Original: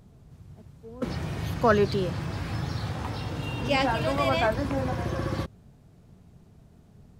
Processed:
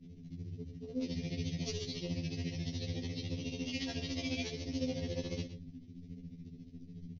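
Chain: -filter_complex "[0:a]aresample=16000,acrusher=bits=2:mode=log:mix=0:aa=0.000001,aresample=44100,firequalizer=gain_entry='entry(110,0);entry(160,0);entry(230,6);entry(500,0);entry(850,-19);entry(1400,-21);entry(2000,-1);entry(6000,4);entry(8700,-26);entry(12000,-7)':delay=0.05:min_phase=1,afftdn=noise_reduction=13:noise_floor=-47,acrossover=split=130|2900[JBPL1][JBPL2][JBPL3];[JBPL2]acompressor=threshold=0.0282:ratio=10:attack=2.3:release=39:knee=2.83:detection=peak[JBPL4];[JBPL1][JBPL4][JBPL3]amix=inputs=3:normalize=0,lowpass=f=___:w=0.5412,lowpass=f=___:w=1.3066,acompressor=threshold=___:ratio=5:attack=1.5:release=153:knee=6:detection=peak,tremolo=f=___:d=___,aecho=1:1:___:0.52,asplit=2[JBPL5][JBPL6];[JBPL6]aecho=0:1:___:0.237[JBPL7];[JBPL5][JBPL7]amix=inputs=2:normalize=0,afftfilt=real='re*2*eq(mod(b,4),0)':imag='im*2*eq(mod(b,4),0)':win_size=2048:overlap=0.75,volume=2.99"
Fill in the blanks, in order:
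6000, 6000, 0.0112, 14, 0.95, 7.4, 116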